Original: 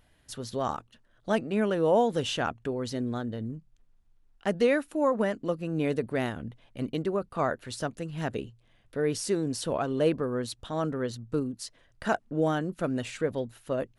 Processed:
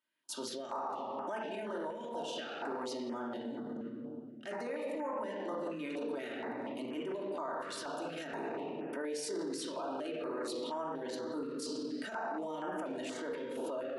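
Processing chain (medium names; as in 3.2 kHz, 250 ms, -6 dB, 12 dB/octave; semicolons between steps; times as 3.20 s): gate -56 dBFS, range -18 dB; peaking EQ 930 Hz +9.5 dB 0.26 oct; level rider gain up to 15 dB; bass shelf 450 Hz -8.5 dB; reverberation RT60 1.5 s, pre-delay 3 ms, DRR -3.5 dB; peak limiter -28 dBFS, peak gain reduction 30 dB; high-pass 240 Hz 24 dB/octave; step-sequenced notch 4.2 Hz 780–4000 Hz; trim -2 dB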